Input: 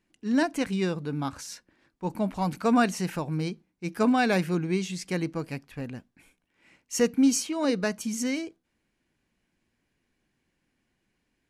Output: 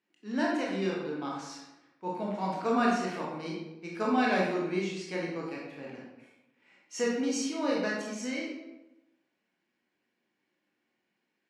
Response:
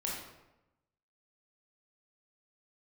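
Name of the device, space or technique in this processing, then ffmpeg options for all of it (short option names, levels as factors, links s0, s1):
supermarket ceiling speaker: -filter_complex "[0:a]highpass=300,lowpass=5400[s0];[1:a]atrim=start_sample=2205[s1];[s0][s1]afir=irnorm=-1:irlink=0,volume=0.596"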